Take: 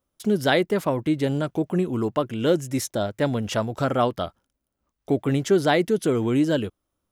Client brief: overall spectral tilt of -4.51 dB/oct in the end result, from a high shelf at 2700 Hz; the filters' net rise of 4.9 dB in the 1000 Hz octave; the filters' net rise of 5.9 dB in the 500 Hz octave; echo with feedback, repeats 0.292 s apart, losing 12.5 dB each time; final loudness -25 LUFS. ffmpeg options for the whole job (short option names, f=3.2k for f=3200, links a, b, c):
-af "equalizer=f=500:t=o:g=6.5,equalizer=f=1k:t=o:g=4.5,highshelf=f=2.7k:g=-3.5,aecho=1:1:292|584|876:0.237|0.0569|0.0137,volume=-5.5dB"